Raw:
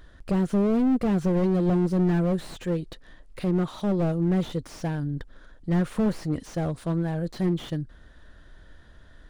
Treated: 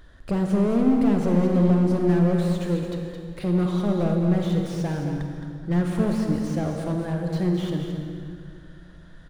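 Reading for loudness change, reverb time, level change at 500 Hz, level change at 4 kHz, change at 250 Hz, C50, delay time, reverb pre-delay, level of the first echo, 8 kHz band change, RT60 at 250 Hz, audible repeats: +2.5 dB, 2.4 s, +2.5 dB, +2.0 dB, +3.0 dB, 2.0 dB, 217 ms, 32 ms, -8.0 dB, +2.0 dB, 2.7 s, 1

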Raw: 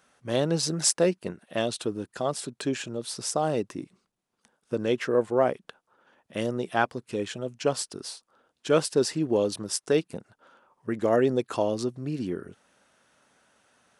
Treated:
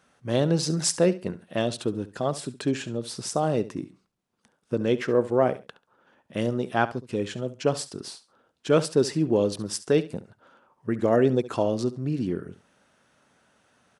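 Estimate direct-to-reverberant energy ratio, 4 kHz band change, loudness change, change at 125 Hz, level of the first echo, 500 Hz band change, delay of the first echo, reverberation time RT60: no reverb, -1.0 dB, +1.5 dB, +5.0 dB, -16.0 dB, +1.5 dB, 69 ms, no reverb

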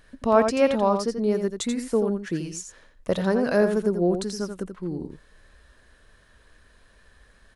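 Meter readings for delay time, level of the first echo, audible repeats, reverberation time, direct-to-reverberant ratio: 85 ms, -7.5 dB, 1, no reverb, no reverb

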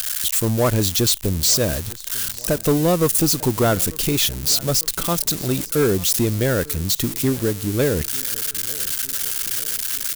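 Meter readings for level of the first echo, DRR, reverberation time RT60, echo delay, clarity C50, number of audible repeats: -22.0 dB, no reverb, no reverb, 898 ms, no reverb, 3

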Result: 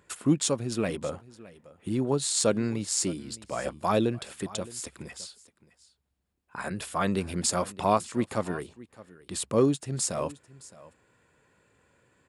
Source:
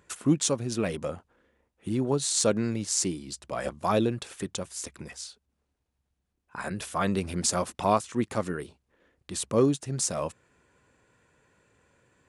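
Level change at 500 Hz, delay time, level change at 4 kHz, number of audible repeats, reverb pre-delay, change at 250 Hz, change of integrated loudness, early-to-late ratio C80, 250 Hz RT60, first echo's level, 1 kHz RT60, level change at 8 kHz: 0.0 dB, 615 ms, -0.5 dB, 1, no reverb, 0.0 dB, 0.0 dB, no reverb, no reverb, -19.5 dB, no reverb, -1.0 dB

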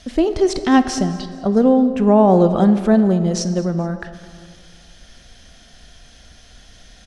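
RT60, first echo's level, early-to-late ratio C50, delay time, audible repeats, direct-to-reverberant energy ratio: 2.1 s, -19.0 dB, 10.5 dB, 214 ms, 3, 10.0 dB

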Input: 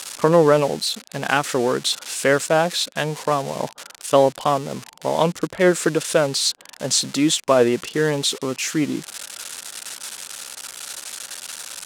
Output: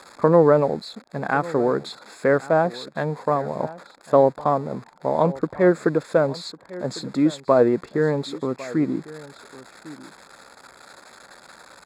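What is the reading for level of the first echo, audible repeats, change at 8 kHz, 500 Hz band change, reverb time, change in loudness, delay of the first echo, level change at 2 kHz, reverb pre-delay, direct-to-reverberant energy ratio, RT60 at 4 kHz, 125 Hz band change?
-18.5 dB, 1, under -20 dB, -0.5 dB, no reverb, -1.5 dB, 1102 ms, -5.5 dB, no reverb, no reverb, no reverb, 0.0 dB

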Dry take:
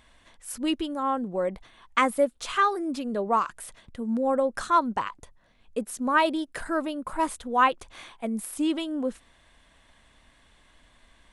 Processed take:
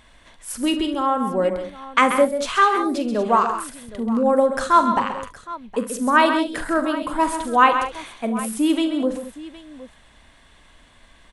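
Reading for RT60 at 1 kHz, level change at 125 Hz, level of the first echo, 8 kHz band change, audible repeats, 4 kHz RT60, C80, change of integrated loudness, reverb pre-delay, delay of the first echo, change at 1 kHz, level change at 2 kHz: no reverb, no reading, -12.0 dB, +6.0 dB, 4, no reverb, no reverb, +7.0 dB, no reverb, 43 ms, +7.0 dB, +7.0 dB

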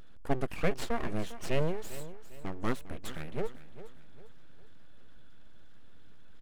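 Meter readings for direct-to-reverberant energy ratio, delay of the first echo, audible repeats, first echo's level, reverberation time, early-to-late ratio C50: no reverb, 402 ms, 3, -14.5 dB, no reverb, no reverb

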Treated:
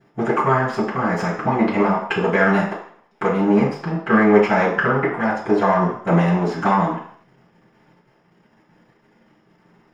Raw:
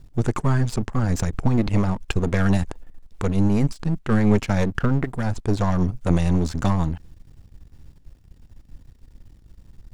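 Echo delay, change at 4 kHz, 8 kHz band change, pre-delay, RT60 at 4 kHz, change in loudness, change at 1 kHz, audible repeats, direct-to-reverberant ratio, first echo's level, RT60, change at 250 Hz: no echo, +1.5 dB, no reading, 3 ms, 0.60 s, +4.0 dB, +12.0 dB, no echo, -21.5 dB, no echo, 0.60 s, +3.0 dB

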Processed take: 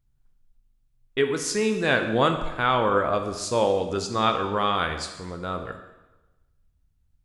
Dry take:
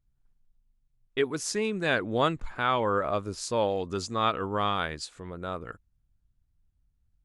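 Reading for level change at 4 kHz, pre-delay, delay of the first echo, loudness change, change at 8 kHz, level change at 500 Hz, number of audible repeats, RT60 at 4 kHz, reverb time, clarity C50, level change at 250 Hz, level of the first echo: +4.5 dB, 5 ms, no echo, +4.5 dB, +4.5 dB, +5.0 dB, no echo, 1.0 s, 1.1 s, 8.0 dB, +4.5 dB, no echo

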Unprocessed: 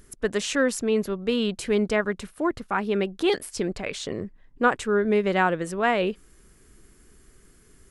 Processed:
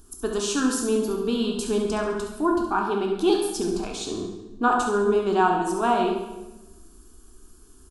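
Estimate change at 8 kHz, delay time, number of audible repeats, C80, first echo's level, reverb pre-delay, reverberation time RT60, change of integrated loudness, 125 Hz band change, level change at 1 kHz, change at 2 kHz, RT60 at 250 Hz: +4.0 dB, 69 ms, 1, 6.0 dB, -9.0 dB, 10 ms, 1.1 s, +1.0 dB, -2.5 dB, +4.0 dB, -4.0 dB, 1.3 s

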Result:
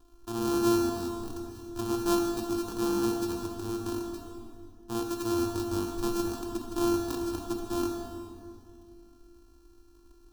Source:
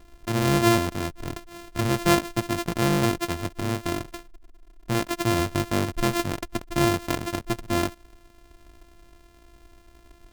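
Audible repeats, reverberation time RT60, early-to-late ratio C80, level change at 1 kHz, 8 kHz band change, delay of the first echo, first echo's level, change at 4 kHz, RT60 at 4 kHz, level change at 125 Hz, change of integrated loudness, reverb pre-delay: no echo, 2.4 s, 4.0 dB, -8.0 dB, -6.0 dB, no echo, no echo, -9.0 dB, 1.9 s, -13.0 dB, -5.5 dB, 3 ms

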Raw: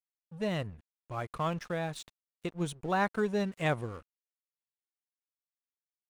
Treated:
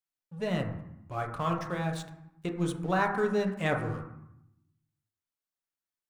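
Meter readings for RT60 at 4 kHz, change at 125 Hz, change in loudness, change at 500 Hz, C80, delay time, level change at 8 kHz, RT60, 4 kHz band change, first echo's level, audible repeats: 0.60 s, +3.5 dB, +2.5 dB, +2.5 dB, 9.5 dB, no echo, 0.0 dB, 0.80 s, 0.0 dB, no echo, no echo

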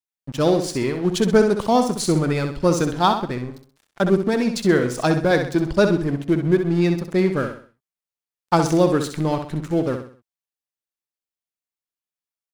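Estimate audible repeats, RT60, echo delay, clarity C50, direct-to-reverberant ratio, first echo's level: 4, no reverb, 64 ms, no reverb, no reverb, -7.5 dB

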